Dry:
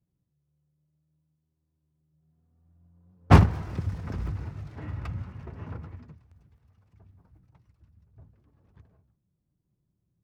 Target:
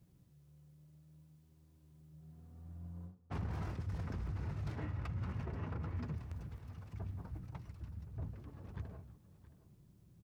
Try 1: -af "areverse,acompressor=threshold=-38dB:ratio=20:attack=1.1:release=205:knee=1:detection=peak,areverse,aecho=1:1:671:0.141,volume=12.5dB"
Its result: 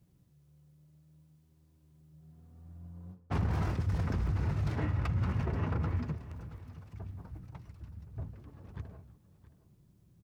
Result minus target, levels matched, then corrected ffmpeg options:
downward compressor: peak gain reduction −9 dB
-af "areverse,acompressor=threshold=-47.5dB:ratio=20:attack=1.1:release=205:knee=1:detection=peak,areverse,aecho=1:1:671:0.141,volume=12.5dB"

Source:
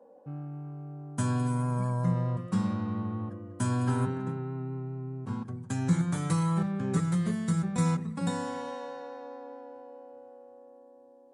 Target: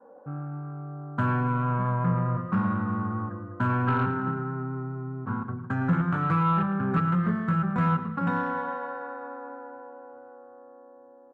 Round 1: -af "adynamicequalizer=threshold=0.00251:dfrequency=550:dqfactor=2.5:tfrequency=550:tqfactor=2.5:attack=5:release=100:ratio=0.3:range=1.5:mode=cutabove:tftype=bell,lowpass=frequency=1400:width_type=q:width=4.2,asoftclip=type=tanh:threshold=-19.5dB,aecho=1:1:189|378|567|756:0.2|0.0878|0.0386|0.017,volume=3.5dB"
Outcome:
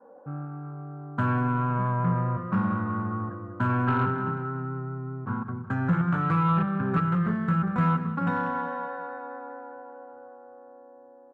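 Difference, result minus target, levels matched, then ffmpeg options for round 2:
echo 78 ms late
-af "adynamicequalizer=threshold=0.00251:dfrequency=550:dqfactor=2.5:tfrequency=550:tqfactor=2.5:attack=5:release=100:ratio=0.3:range=1.5:mode=cutabove:tftype=bell,lowpass=frequency=1400:width_type=q:width=4.2,asoftclip=type=tanh:threshold=-19.5dB,aecho=1:1:111|222|333|444:0.2|0.0878|0.0386|0.017,volume=3.5dB"

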